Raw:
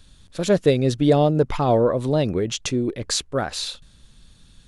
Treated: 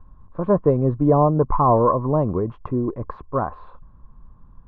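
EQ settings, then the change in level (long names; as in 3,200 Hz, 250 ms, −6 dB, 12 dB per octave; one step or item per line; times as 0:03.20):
transistor ladder low-pass 1,100 Hz, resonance 85%
spectral tilt −2 dB per octave
+8.5 dB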